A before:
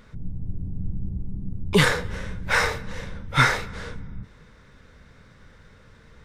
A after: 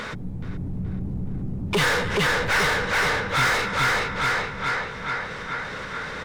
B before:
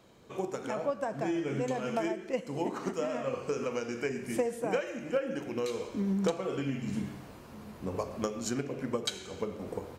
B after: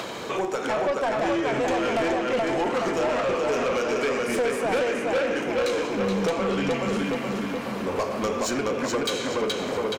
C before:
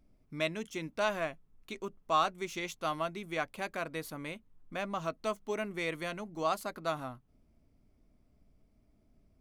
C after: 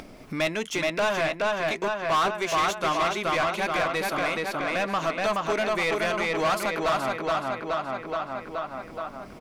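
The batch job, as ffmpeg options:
-filter_complex "[0:a]asplit=2[a][b];[b]adelay=424,lowpass=f=4.9k:p=1,volume=-3dB,asplit=2[c][d];[d]adelay=424,lowpass=f=4.9k:p=1,volume=0.5,asplit=2[e][f];[f]adelay=424,lowpass=f=4.9k:p=1,volume=0.5,asplit=2[g][h];[h]adelay=424,lowpass=f=4.9k:p=1,volume=0.5,asplit=2[i][j];[j]adelay=424,lowpass=f=4.9k:p=1,volume=0.5,asplit=2[k][l];[l]adelay=424,lowpass=f=4.9k:p=1,volume=0.5,asplit=2[m][n];[n]adelay=424,lowpass=f=4.9k:p=1,volume=0.5[o];[c][e][g][i][k][m][o]amix=inputs=7:normalize=0[p];[a][p]amix=inputs=2:normalize=0,acompressor=mode=upward:threshold=-33dB:ratio=2.5,asoftclip=type=tanh:threshold=-16dB,asplit=2[q][r];[r]highpass=f=720:p=1,volume=23dB,asoftclip=type=tanh:threshold=-16dB[s];[q][s]amix=inputs=2:normalize=0,lowpass=f=4.5k:p=1,volume=-6dB"

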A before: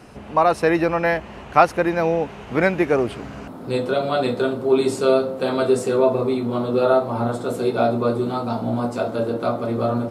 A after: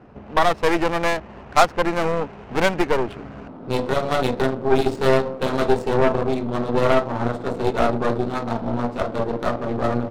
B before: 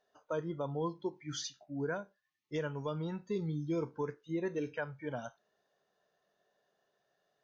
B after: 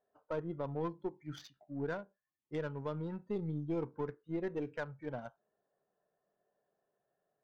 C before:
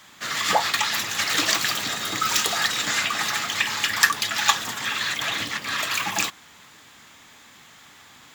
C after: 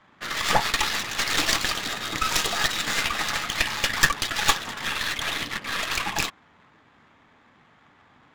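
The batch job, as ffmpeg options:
-af "adynamicsmooth=sensitivity=6.5:basefreq=1.3k,aeval=exprs='0.891*(cos(1*acos(clip(val(0)/0.891,-1,1)))-cos(1*PI/2))+0.141*(cos(8*acos(clip(val(0)/0.891,-1,1)))-cos(8*PI/2))':c=same,volume=-2dB"

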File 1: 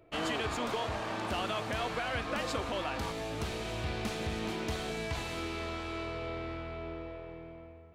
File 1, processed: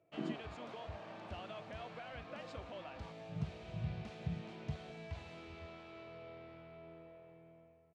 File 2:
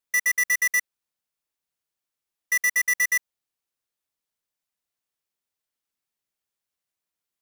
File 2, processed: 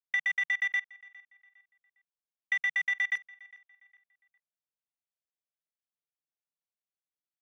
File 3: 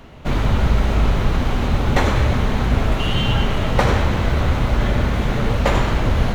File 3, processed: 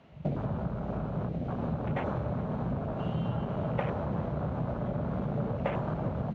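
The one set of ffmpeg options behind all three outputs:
-filter_complex "[0:a]afwtdn=0.0794,equalizer=f=160:t=o:w=0.67:g=10,equalizer=f=630:t=o:w=0.67:g=7,equalizer=f=2.5k:t=o:w=0.67:g=3,acompressor=threshold=-25dB:ratio=12,highpass=100,lowpass=5.6k,asplit=2[a][b];[b]adelay=407,lowpass=f=3.5k:p=1,volume=-21.5dB,asplit=2[c][d];[d]adelay=407,lowpass=f=3.5k:p=1,volume=0.36,asplit=2[e][f];[f]adelay=407,lowpass=f=3.5k:p=1,volume=0.36[g];[c][e][g]amix=inputs=3:normalize=0[h];[a][h]amix=inputs=2:normalize=0,volume=-1dB"

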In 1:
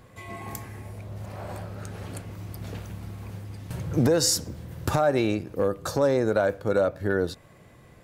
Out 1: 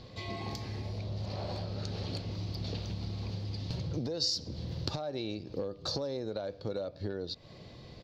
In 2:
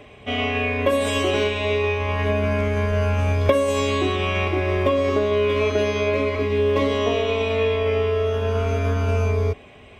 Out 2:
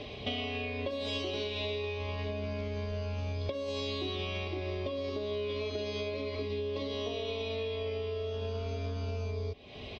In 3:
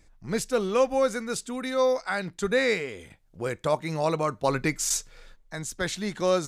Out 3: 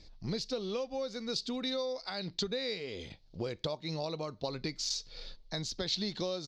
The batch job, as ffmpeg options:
-af "acompressor=threshold=-35dB:ratio=12,firequalizer=gain_entry='entry(540,0);entry(1500,-9);entry(4400,14);entry(8500,-21)':delay=0.05:min_phase=1,volume=2.5dB"

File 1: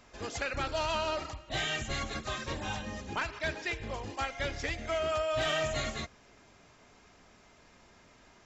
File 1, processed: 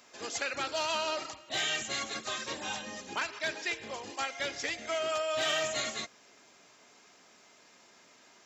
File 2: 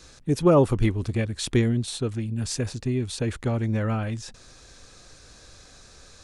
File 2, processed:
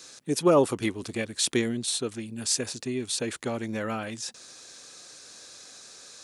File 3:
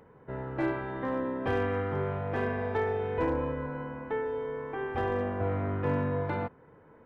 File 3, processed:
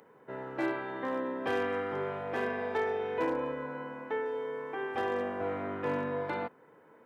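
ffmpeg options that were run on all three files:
-af "highpass=240,highshelf=f=3.5k:g=9.5,volume=-1.5dB"

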